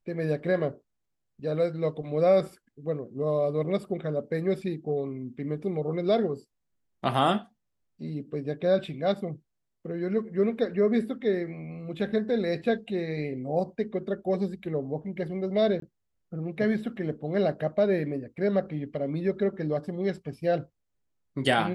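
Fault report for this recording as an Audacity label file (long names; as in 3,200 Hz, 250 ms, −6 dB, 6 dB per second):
15.800000	15.820000	drop-out 23 ms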